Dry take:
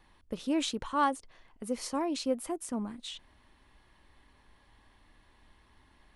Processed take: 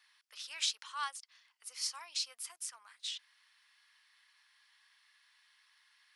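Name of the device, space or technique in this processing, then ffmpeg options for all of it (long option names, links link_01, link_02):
headphones lying on a table: -filter_complex "[0:a]highpass=frequency=1400:width=0.5412,highpass=frequency=1400:width=1.3066,equalizer=frequency=5100:width_type=o:width=0.49:gain=8,asettb=1/sr,asplit=3[link_01][link_02][link_03];[link_01]atrim=end=0.664[link_04];[link_02]atrim=start=0.66:end=2.66,asetpts=PTS-STARTPTS,afade=type=in:duration=0.004:curve=qsin,afade=type=out:start_time=1.996:duration=0.004:curve=qsin,equalizer=frequency=1700:width_type=o:width=0.87:gain=-4.5[link_05];[link_03]atrim=start=2.656[link_06];[link_04][link_05]acrossfade=duration=0.004:curve1=hsin:curve2=qsin[link_07];[link_07][link_06]acrossfade=duration=0.004:curve1=qsin:curve2=hsin"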